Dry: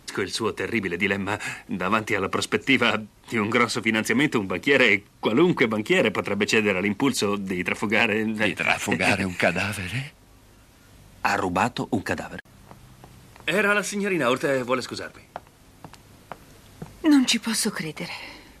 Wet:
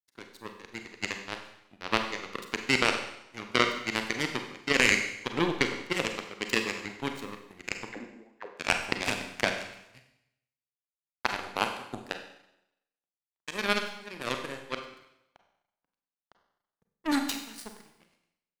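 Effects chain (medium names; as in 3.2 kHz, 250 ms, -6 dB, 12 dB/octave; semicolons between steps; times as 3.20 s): power-law waveshaper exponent 3; 7.89–8.54 s: auto-wah 260–3400 Hz, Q 5.8, down, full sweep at -31.5 dBFS; Schroeder reverb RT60 0.82 s, combs from 32 ms, DRR 5 dB; trim +3.5 dB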